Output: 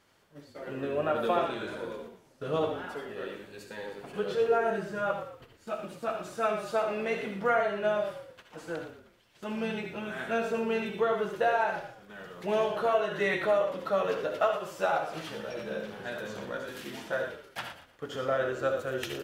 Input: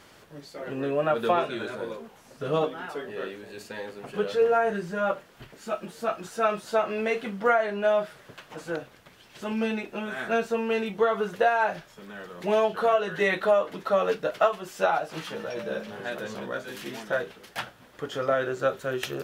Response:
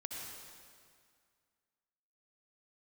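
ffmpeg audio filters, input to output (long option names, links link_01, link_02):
-filter_complex "[0:a]agate=range=-9dB:threshold=-43dB:ratio=16:detection=peak,asplit=4[link_01][link_02][link_03][link_04];[link_02]adelay=117,afreqshift=-41,volume=-11dB[link_05];[link_03]adelay=234,afreqshift=-82,volume=-21.2dB[link_06];[link_04]adelay=351,afreqshift=-123,volume=-31.3dB[link_07];[link_01][link_05][link_06][link_07]amix=inputs=4:normalize=0[link_08];[1:a]atrim=start_sample=2205,atrim=end_sample=3969[link_09];[link_08][link_09]afir=irnorm=-1:irlink=0"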